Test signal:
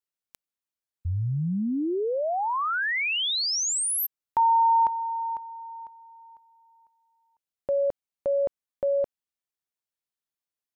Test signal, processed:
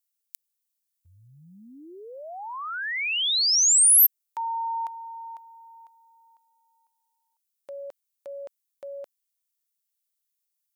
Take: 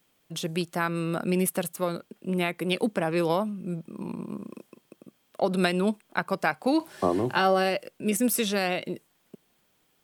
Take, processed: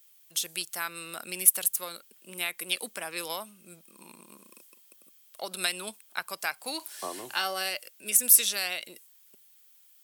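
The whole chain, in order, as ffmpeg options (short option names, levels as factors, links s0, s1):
-af "aderivative,aeval=exprs='0.355*(cos(1*acos(clip(val(0)/0.355,-1,1)))-cos(1*PI/2))+0.00398*(cos(2*acos(clip(val(0)/0.355,-1,1)))-cos(2*PI/2))':c=same,volume=2.66"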